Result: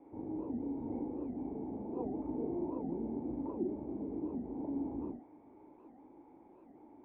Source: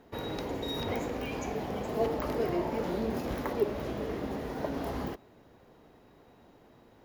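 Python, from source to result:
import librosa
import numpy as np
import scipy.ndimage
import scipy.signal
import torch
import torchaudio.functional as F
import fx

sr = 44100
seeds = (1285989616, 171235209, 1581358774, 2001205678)

y = fx.dmg_noise_band(x, sr, seeds[0], low_hz=270.0, high_hz=3500.0, level_db=-45.0)
y = fx.formant_cascade(y, sr, vowel='u')
y = fx.doubler(y, sr, ms=39.0, db=-3.0)
y = fx.record_warp(y, sr, rpm=78.0, depth_cents=250.0)
y = y * 10.0 ** (1.0 / 20.0)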